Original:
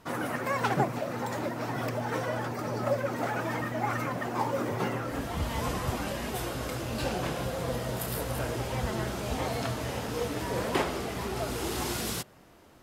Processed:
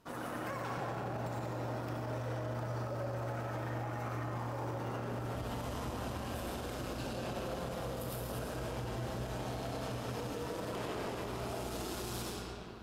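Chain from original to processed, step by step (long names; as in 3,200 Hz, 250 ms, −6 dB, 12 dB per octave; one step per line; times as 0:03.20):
parametric band 2,000 Hz −5 dB 0.38 octaves
comb and all-pass reverb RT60 2.9 s, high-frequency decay 0.65×, pre-delay 55 ms, DRR −4 dB
amplitude modulation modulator 190 Hz, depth 30%
brickwall limiter −22.5 dBFS, peak gain reduction 9.5 dB
level −7.5 dB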